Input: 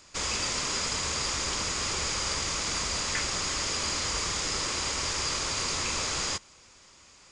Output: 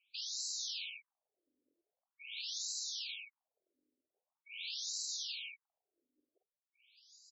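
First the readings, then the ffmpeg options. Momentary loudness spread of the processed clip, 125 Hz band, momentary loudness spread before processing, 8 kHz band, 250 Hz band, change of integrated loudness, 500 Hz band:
14 LU, under -40 dB, 1 LU, -15.0 dB, under -40 dB, -11.5 dB, under -40 dB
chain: -filter_complex "[0:a]afftdn=nr=23:nf=-45,acrossover=split=690|900[a][b][c];[b]aecho=1:1:138:0.141[d];[c]aeval=exprs='(mod(35.5*val(0)+1,2)-1)/35.5':c=same[e];[a][d][e]amix=inputs=3:normalize=0,afftfilt=real='re*(1-between(b*sr/4096,210,2200))':imag='im*(1-between(b*sr/4096,210,2200))':win_size=4096:overlap=0.75,areverse,acompressor=threshold=-49dB:ratio=6,areverse,equalizer=f=680:t=o:w=0.62:g=8,aeval=exprs='val(0)+0.001*(sin(2*PI*50*n/s)+sin(2*PI*2*50*n/s)/2+sin(2*PI*3*50*n/s)/3+sin(2*PI*4*50*n/s)/4+sin(2*PI*5*50*n/s)/5)':c=same,acompressor=mode=upward:threshold=-56dB:ratio=2.5,asplit=2[f][g];[g]adelay=47,volume=-7dB[h];[f][h]amix=inputs=2:normalize=0,afftfilt=real='re*between(b*sr/1024,390*pow(5500/390,0.5+0.5*sin(2*PI*0.44*pts/sr))/1.41,390*pow(5500/390,0.5+0.5*sin(2*PI*0.44*pts/sr))*1.41)':imag='im*between(b*sr/1024,390*pow(5500/390,0.5+0.5*sin(2*PI*0.44*pts/sr))/1.41,390*pow(5500/390,0.5+0.5*sin(2*PI*0.44*pts/sr))*1.41)':win_size=1024:overlap=0.75,volume=16dB"

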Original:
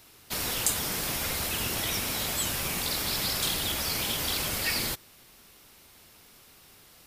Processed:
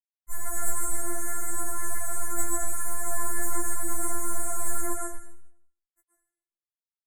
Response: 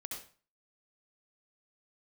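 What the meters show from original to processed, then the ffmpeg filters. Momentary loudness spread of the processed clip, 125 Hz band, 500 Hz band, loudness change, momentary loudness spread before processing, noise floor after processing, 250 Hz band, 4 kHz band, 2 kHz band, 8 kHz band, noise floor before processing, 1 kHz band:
5 LU, -2.5 dB, -0.5 dB, -3.0 dB, 3 LU, under -85 dBFS, -1.5 dB, under -35 dB, -6.5 dB, +1.0 dB, -56 dBFS, +1.0 dB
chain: -filter_complex "[0:a]highpass=f=220:w=0.5412,highpass=f=220:w=1.3066,acrossover=split=9100[a][b];[b]acompressor=threshold=-47dB:ratio=4:attack=1:release=60[c];[a][c]amix=inputs=2:normalize=0,tiltshelf=f=1.3k:g=-10,aeval=exprs='(mod(6.68*val(0)+1,2)-1)/6.68':c=same,acrusher=bits=3:dc=4:mix=0:aa=0.000001,aphaser=in_gain=1:out_gain=1:delay=3.7:decay=0.52:speed=0.41:type=triangular,asuperstop=centerf=3700:order=12:qfactor=0.72,aecho=1:1:151:0.0668[d];[1:a]atrim=start_sample=2205,asetrate=24255,aresample=44100[e];[d][e]afir=irnorm=-1:irlink=0,afftfilt=real='re*4*eq(mod(b,16),0)':imag='im*4*eq(mod(b,16),0)':win_size=2048:overlap=0.75"

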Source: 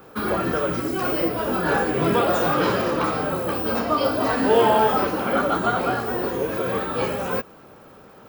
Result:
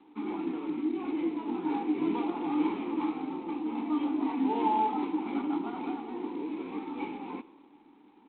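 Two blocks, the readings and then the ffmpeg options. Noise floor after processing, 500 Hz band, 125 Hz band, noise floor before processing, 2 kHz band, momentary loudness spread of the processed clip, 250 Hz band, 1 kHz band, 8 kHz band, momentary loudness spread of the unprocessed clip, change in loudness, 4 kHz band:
-58 dBFS, -17.0 dB, -21.0 dB, -47 dBFS, -20.0 dB, 9 LU, -3.5 dB, -10.5 dB, n/a, 7 LU, -10.0 dB, -18.0 dB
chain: -filter_complex "[0:a]asplit=3[a][b][c];[a]bandpass=f=300:t=q:w=8,volume=0dB[d];[b]bandpass=f=870:t=q:w=8,volume=-6dB[e];[c]bandpass=f=2.24k:t=q:w=8,volume=-9dB[f];[d][e][f]amix=inputs=3:normalize=0,lowshelf=f=150:t=q:w=1.5:g=-9,asplit=5[g][h][i][j][k];[h]adelay=100,afreqshift=32,volume=-21dB[l];[i]adelay=200,afreqshift=64,volume=-26dB[m];[j]adelay=300,afreqshift=96,volume=-31.1dB[n];[k]adelay=400,afreqshift=128,volume=-36.1dB[o];[g][l][m][n][o]amix=inputs=5:normalize=0" -ar 8000 -c:a adpcm_g726 -b:a 24k

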